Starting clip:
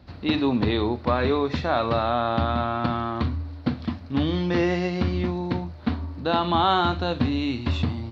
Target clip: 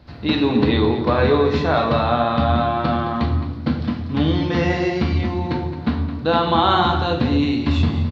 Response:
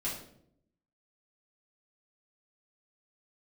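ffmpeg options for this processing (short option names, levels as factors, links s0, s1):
-filter_complex "[0:a]asplit=2[s0][s1];[s1]adelay=215.7,volume=0.282,highshelf=f=4000:g=-4.85[s2];[s0][s2]amix=inputs=2:normalize=0,asplit=2[s3][s4];[1:a]atrim=start_sample=2205,asetrate=31311,aresample=44100[s5];[s4][s5]afir=irnorm=-1:irlink=0,volume=0.562[s6];[s3][s6]amix=inputs=2:normalize=0"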